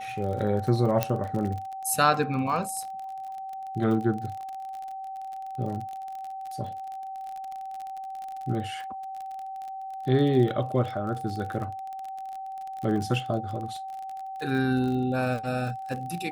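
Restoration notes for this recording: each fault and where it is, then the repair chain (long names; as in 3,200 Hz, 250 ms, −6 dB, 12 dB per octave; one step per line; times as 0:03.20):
surface crackle 34 per second −33 dBFS
whistle 770 Hz −34 dBFS
0:01.03: click −8 dBFS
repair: click removal
notch filter 770 Hz, Q 30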